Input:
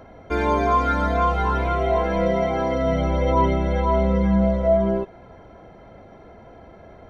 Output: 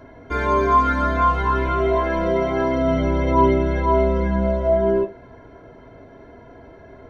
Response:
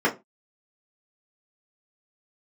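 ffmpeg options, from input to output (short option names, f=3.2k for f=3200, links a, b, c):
-filter_complex "[0:a]asplit=2[a][b];[1:a]atrim=start_sample=2205,highshelf=f=2.3k:g=7.5[c];[b][c]afir=irnorm=-1:irlink=0,volume=-18.5dB[d];[a][d]amix=inputs=2:normalize=0"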